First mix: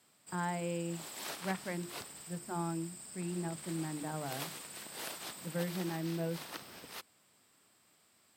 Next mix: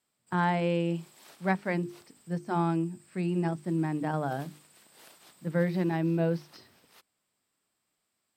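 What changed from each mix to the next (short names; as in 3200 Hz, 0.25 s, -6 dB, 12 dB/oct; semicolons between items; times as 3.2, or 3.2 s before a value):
speech +9.5 dB; background -12.0 dB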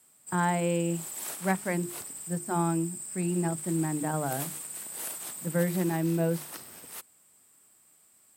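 background +11.5 dB; master: add resonant high shelf 6400 Hz +9.5 dB, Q 1.5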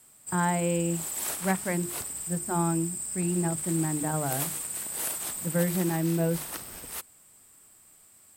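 background +5.0 dB; master: remove HPF 130 Hz 12 dB/oct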